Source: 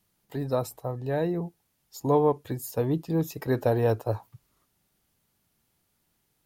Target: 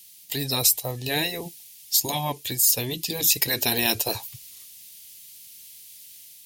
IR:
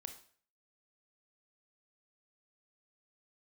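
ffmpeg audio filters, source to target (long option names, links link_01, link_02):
-af "aexciter=amount=14.6:drive=4.3:freq=2100,dynaudnorm=framelen=150:gausssize=5:maxgain=3.5dB,afftfilt=real='re*lt(hypot(re,im),0.398)':imag='im*lt(hypot(re,im),0.398)':win_size=1024:overlap=0.75"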